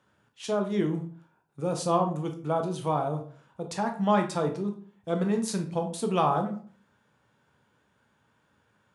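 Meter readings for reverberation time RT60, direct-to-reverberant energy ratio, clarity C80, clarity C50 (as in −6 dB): 0.45 s, 4.0 dB, 14.5 dB, 9.5 dB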